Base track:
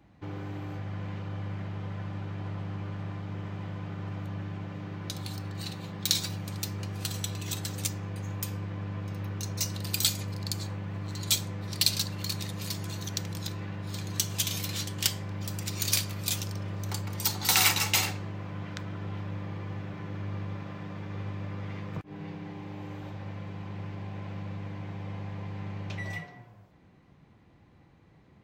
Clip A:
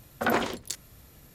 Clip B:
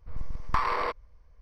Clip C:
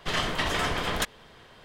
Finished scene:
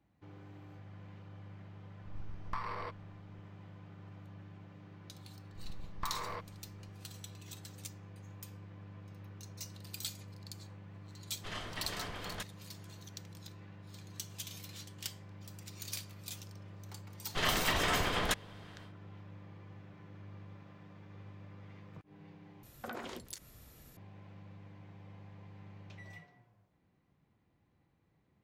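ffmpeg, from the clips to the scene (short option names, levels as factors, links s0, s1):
-filter_complex "[2:a]asplit=2[s0][s1];[3:a]asplit=2[s2][s3];[0:a]volume=0.178[s4];[1:a]acompressor=threshold=0.02:ratio=12:attack=2.6:release=185:knee=6:detection=peak[s5];[s4]asplit=2[s6][s7];[s6]atrim=end=22.634[s8];[s5]atrim=end=1.34,asetpts=PTS-STARTPTS,volume=0.631[s9];[s7]atrim=start=23.966[s10];[s0]atrim=end=1.41,asetpts=PTS-STARTPTS,volume=0.224,afade=t=in:d=0.004:c=hsin,afade=t=out:st=1.406:d=0.004:c=hsin,adelay=1990[s11];[s1]atrim=end=1.41,asetpts=PTS-STARTPTS,volume=0.224,afade=t=in:d=0.004:c=hsin,afade=t=out:st=1.406:d=0.004:c=hsin,adelay=242109S[s12];[s2]atrim=end=1.64,asetpts=PTS-STARTPTS,volume=0.178,afade=t=in:d=0.004:c=hsin,afade=t=out:st=1.636:d=0.004:c=hsin,adelay=501858S[s13];[s3]atrim=end=1.64,asetpts=PTS-STARTPTS,volume=0.631,afade=t=in:d=0.1,afade=t=out:st=1.54:d=0.1,adelay=17290[s14];[s8][s9]acrossfade=d=0.004:c1=hsin:c2=hsin[s15];[s15][s10]acrossfade=d=0.004:c1=hsin:c2=hsin[s16];[s16][s11][s12][s13][s14]amix=inputs=5:normalize=0"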